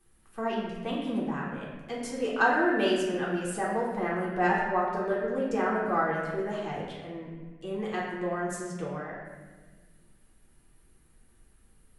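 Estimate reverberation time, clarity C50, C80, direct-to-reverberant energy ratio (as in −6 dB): 1.4 s, 1.0 dB, 3.0 dB, −6.0 dB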